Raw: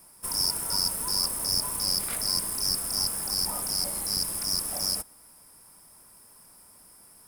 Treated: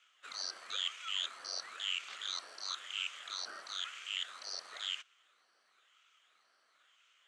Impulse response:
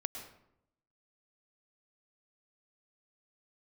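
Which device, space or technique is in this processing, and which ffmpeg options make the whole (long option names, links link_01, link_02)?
voice changer toy: -af "aeval=exprs='val(0)*sin(2*PI*1500*n/s+1500*0.6/0.99*sin(2*PI*0.99*n/s))':channel_layout=same,highpass=590,equalizer=frequency=880:width_type=q:width=4:gain=-8,equalizer=frequency=1300:width_type=q:width=4:gain=9,equalizer=frequency=3100:width_type=q:width=4:gain=6,lowpass=frequency=5000:width=0.5412,lowpass=frequency=5000:width=1.3066,volume=-7.5dB"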